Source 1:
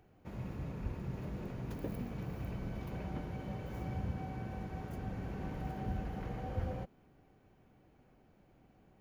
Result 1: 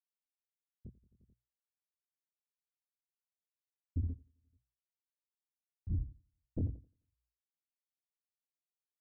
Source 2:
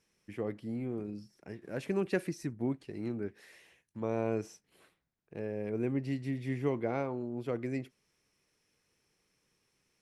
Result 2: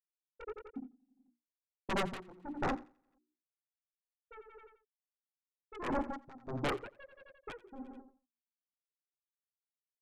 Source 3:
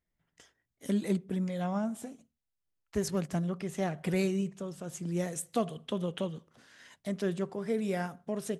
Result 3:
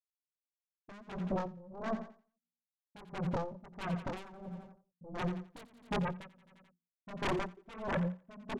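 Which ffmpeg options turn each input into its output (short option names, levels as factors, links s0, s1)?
-af "afftfilt=real='re*gte(hypot(re,im),0.2)':imag='im*gte(hypot(re,im),0.2)':win_size=1024:overlap=0.75,lowpass=f=1800:p=1,equalizer=f=260:t=o:w=1.8:g=4,bandreject=f=60:t=h:w=6,bandreject=f=120:t=h:w=6,bandreject=f=180:t=h:w=6,bandreject=f=240:t=h:w=6,bandreject=f=300:t=h:w=6,bandreject=f=360:t=h:w=6,acompressor=threshold=0.01:ratio=2.5,aeval=exprs='0.0376*(cos(1*acos(clip(val(0)/0.0376,-1,1)))-cos(1*PI/2))+0.00944*(cos(2*acos(clip(val(0)/0.0376,-1,1)))-cos(2*PI/2))':c=same,flanger=delay=17.5:depth=6.8:speed=1.6,aresample=11025,asoftclip=type=hard:threshold=0.0168,aresample=44100,crystalizer=i=8:c=0,aeval=exprs='0.0299*sin(PI/2*5.62*val(0)/0.0299)':c=same,aecho=1:1:87|174|261|348|435:0.2|0.106|0.056|0.0297|0.0157,aeval=exprs='val(0)*pow(10,-21*(0.5-0.5*cos(2*PI*1.5*n/s))/20)':c=same,volume=1.26"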